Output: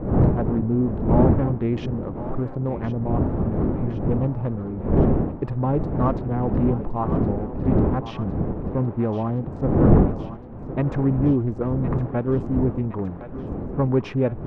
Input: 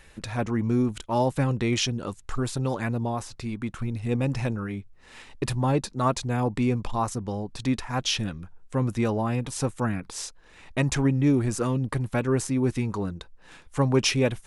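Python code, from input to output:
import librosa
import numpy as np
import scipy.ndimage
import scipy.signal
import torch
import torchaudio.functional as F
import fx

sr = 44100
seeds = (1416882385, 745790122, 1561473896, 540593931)

p1 = fx.wiener(x, sr, points=25)
p2 = fx.dmg_wind(p1, sr, seeds[0], corner_hz=270.0, level_db=-25.0)
p3 = np.clip(p2, -10.0 ** (-16.0 / 20.0), 10.0 ** (-16.0 / 20.0))
p4 = p2 + (p3 * librosa.db_to_amplitude(-3.0))
p5 = scipy.signal.sosfilt(scipy.signal.butter(2, 1200.0, 'lowpass', fs=sr, output='sos'), p4)
p6 = fx.echo_thinned(p5, sr, ms=1064, feedback_pct=71, hz=490.0, wet_db=-11)
y = p6 * librosa.db_to_amplitude(-2.5)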